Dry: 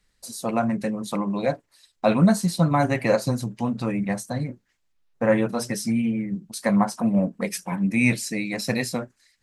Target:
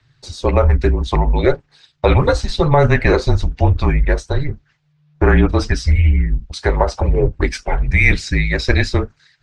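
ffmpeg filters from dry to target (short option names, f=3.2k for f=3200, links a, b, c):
-filter_complex "[0:a]afreqshift=-150,aphaser=in_gain=1:out_gain=1:delay=2.1:decay=0.24:speed=1.1:type=triangular,acrossover=split=5500[a][b];[b]acrusher=bits=2:mix=0:aa=0.5[c];[a][c]amix=inputs=2:normalize=0,afftfilt=real='re*lt(hypot(re,im),1.41)':imag='im*lt(hypot(re,im),1.41)':win_size=1024:overlap=0.75,alimiter=level_in=11.5dB:limit=-1dB:release=50:level=0:latency=1,volume=-1dB"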